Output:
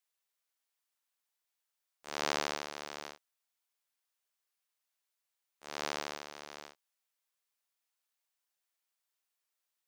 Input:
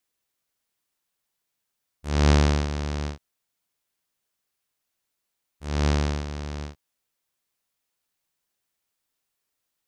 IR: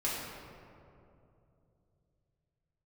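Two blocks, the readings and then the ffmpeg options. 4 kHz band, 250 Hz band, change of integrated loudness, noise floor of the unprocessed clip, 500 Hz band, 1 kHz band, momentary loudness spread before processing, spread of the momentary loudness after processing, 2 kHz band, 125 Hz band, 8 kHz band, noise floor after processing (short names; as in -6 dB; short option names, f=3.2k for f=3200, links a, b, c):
-6.0 dB, -21.0 dB, -13.5 dB, -81 dBFS, -11.0 dB, -7.0 dB, 21 LU, 20 LU, -6.0 dB, -34.5 dB, -6.0 dB, under -85 dBFS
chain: -af "highpass=600,volume=-6dB"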